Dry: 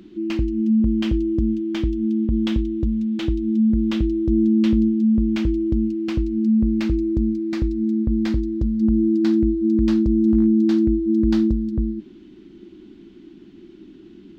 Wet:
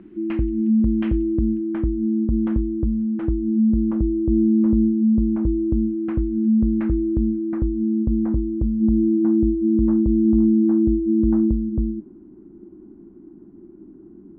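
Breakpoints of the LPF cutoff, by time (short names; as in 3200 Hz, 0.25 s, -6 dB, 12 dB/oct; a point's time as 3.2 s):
LPF 24 dB/oct
1.29 s 2200 Hz
1.89 s 1500 Hz
3.29 s 1500 Hz
4.01 s 1100 Hz
5.57 s 1100 Hz
6.03 s 1700 Hz
7.25 s 1700 Hz
7.89 s 1100 Hz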